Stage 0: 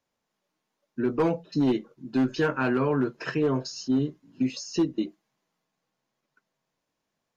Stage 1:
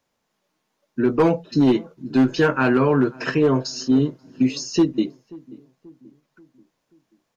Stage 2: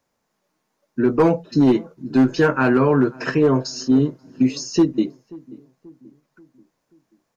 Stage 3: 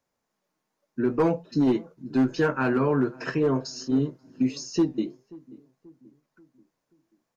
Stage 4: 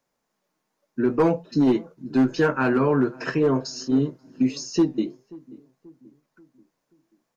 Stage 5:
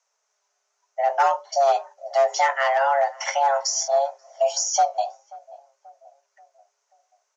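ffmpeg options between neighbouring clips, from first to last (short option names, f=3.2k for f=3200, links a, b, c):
-filter_complex "[0:a]asplit=2[a][b];[b]adelay=534,lowpass=f=940:p=1,volume=-21.5dB,asplit=2[c][d];[d]adelay=534,lowpass=f=940:p=1,volume=0.51,asplit=2[e][f];[f]adelay=534,lowpass=f=940:p=1,volume=0.51,asplit=2[g][h];[h]adelay=534,lowpass=f=940:p=1,volume=0.51[i];[a][c][e][g][i]amix=inputs=5:normalize=0,volume=7dB"
-af "equalizer=f=3.2k:t=o:w=0.88:g=-5.5,volume=1.5dB"
-af "flanger=delay=1.3:depth=6.6:regen=-85:speed=0.5:shape=triangular,volume=-2.5dB"
-af "equalizer=f=83:t=o:w=0.45:g=-12.5,volume=3dB"
-af "lowpass=f=5.8k:t=q:w=4.9,afreqshift=410"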